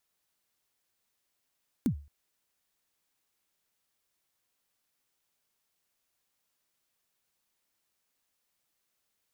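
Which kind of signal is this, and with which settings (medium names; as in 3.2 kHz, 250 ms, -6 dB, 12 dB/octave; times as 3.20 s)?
kick drum length 0.22 s, from 290 Hz, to 72 Hz, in 90 ms, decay 0.36 s, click on, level -20 dB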